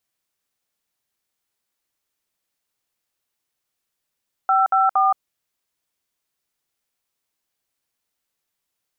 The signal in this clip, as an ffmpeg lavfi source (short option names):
-f lavfi -i "aevalsrc='0.15*clip(min(mod(t,0.232),0.172-mod(t,0.232))/0.002,0,1)*(eq(floor(t/0.232),0)*(sin(2*PI*770*mod(t,0.232))+sin(2*PI*1336*mod(t,0.232)))+eq(floor(t/0.232),1)*(sin(2*PI*770*mod(t,0.232))+sin(2*PI*1336*mod(t,0.232)))+eq(floor(t/0.232),2)*(sin(2*PI*770*mod(t,0.232))+sin(2*PI*1209*mod(t,0.232))))':d=0.696:s=44100"